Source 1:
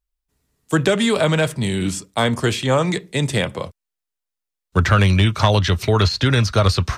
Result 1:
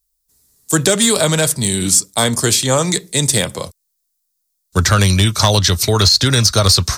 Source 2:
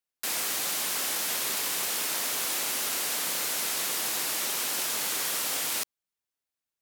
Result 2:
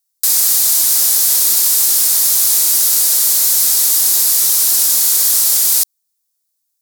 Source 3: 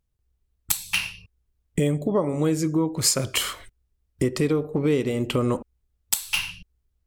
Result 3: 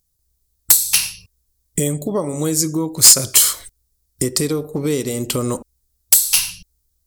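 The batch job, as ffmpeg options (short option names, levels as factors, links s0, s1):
-af "aexciter=amount=5.3:drive=5.9:freq=4000,asoftclip=type=hard:threshold=0.596,volume=1.19"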